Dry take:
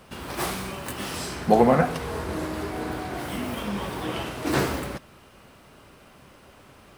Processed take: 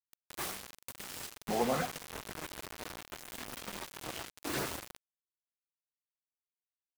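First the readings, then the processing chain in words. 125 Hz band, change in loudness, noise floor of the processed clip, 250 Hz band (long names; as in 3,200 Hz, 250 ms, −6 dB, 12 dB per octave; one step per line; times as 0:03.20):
−17.0 dB, −12.5 dB, below −85 dBFS, −16.0 dB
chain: low-shelf EQ 500 Hz −8 dB
soft clipping −10.5 dBFS, distortion −21 dB
auto-filter notch saw up 7.3 Hz 440–6,400 Hz
bit reduction 5 bits
level −8 dB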